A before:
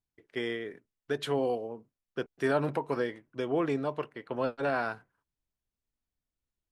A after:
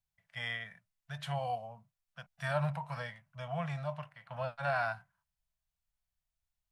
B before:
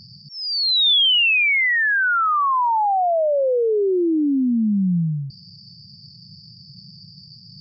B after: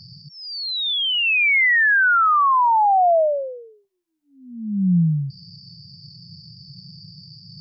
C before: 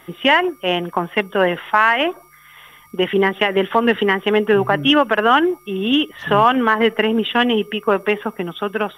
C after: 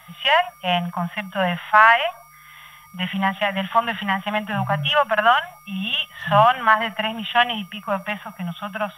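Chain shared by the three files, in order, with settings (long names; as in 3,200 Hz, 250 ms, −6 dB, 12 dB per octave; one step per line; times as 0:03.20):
harmonic and percussive parts rebalanced percussive −11 dB
elliptic band-stop filter 180–640 Hz, stop band 60 dB
level +3.5 dB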